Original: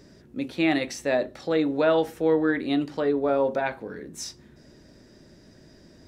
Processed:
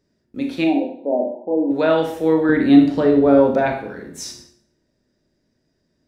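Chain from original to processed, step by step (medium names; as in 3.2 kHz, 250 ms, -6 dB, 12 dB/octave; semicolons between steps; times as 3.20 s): gate with hold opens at -39 dBFS; 0.64–1.71 s: brick-wall FIR band-pass 180–1000 Hz; 2.49–3.76 s: bass shelf 380 Hz +11 dB; Schroeder reverb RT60 0.55 s, combs from 25 ms, DRR 3 dB; trim +3 dB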